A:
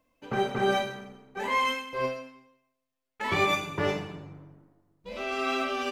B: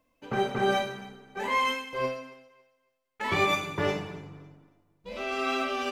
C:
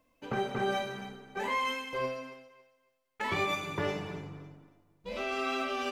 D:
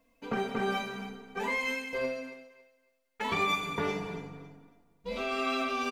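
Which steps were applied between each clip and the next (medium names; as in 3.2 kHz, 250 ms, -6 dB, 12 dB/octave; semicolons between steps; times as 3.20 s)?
thinning echo 277 ms, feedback 25%, high-pass 290 Hz, level -19 dB
compression 2:1, threshold -34 dBFS, peak gain reduction 8 dB; trim +1 dB
comb 4.3 ms, depth 70%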